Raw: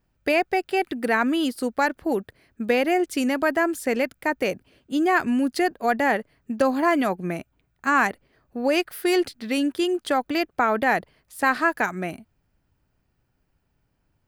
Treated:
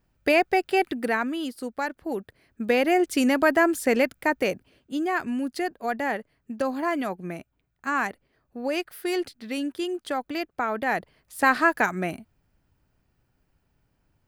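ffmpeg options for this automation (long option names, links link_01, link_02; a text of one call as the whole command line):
ffmpeg -i in.wav -af "volume=17dB,afade=type=out:start_time=0.82:duration=0.48:silence=0.398107,afade=type=in:start_time=2.03:duration=1.23:silence=0.354813,afade=type=out:start_time=4.04:duration=1.03:silence=0.398107,afade=type=in:start_time=10.81:duration=0.59:silence=0.446684" out.wav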